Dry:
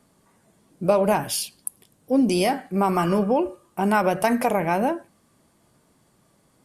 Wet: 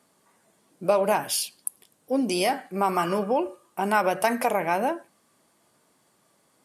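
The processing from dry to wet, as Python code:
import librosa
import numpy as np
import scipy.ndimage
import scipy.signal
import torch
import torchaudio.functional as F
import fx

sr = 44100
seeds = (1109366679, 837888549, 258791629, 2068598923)

y = fx.highpass(x, sr, hz=470.0, slope=6)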